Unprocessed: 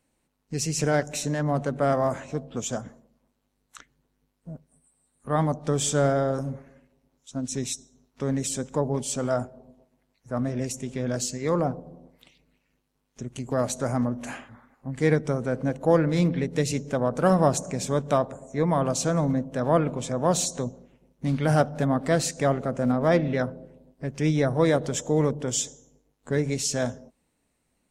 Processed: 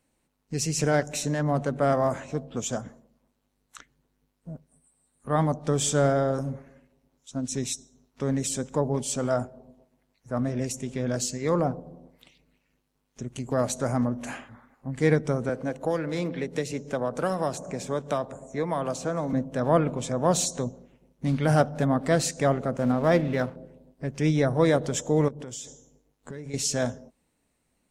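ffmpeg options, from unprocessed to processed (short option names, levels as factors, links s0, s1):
-filter_complex "[0:a]asettb=1/sr,asplit=3[s0][s1][s2];[s0]atrim=end=15.494[s3];[s1]atrim=start=15.49:end=19.33,asetpts=PTS-STARTPTS,afade=t=in:d=0.004:c=qsin,afade=t=out:st=3.836:d=0.004:c=qsin,acrossover=split=290|2100[s4][s5][s6];[s4]acompressor=threshold=0.0141:ratio=4[s7];[s5]acompressor=threshold=0.0562:ratio=4[s8];[s6]acompressor=threshold=0.01:ratio=4[s9];[s7][s8][s9]amix=inputs=3:normalize=0[s10];[s2]atrim=start=19.326[s11];[s3][s10]acrossfade=d=0.004:c1=hsin:c2=qsin[s12];[s12][s11]acrossfade=d=0.004:c1=qsin:c2=hsin,asettb=1/sr,asplit=3[s13][s14][s15];[s13]atrim=end=22.774[s16];[s14]atrim=start=22.77:end=23.56,asetpts=PTS-STARTPTS,afade=t=in:d=0.004:c=qsin,afade=t=out:st=0.786:d=0.004:c=qsin,aeval=exprs='sgn(val(0))*max(abs(val(0))-0.00631,0)':c=same[s17];[s15]atrim=start=23.556[s18];[s16][s17]acrossfade=d=0.004:c1=hsin:c2=qsin[s19];[s19][s18]acrossfade=d=0.004:c1=qsin:c2=hsin,asettb=1/sr,asplit=3[s20][s21][s22];[s20]atrim=end=25.284[s23];[s21]atrim=start=25.28:end=26.54,asetpts=PTS-STARTPTS,afade=t=in:d=0.004:c=qsin,afade=t=out:st=1.256:d=0.004:c=qsin,acompressor=threshold=0.0178:ratio=6:attack=3.2:release=140:knee=1:detection=peak[s24];[s22]atrim=start=26.536[s25];[s23][s24]acrossfade=d=0.004:c1=hsin:c2=qsin[s26];[s26][s25]acrossfade=d=0.004:c1=qsin:c2=hsin"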